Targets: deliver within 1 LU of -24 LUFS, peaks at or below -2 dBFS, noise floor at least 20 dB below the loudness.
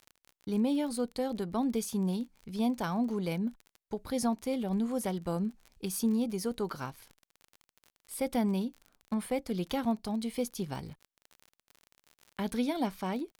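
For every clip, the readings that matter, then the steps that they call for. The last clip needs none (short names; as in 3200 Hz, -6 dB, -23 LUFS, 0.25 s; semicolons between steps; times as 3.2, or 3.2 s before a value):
ticks 34/s; loudness -33.5 LUFS; peak -19.0 dBFS; loudness target -24.0 LUFS
-> de-click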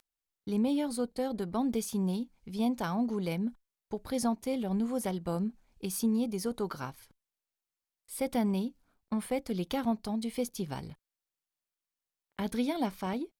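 ticks 0.30/s; loudness -33.5 LUFS; peak -19.0 dBFS; loudness target -24.0 LUFS
-> gain +9.5 dB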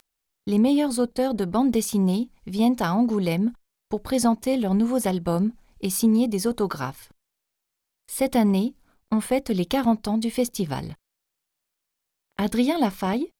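loudness -24.0 LUFS; peak -9.5 dBFS; noise floor -82 dBFS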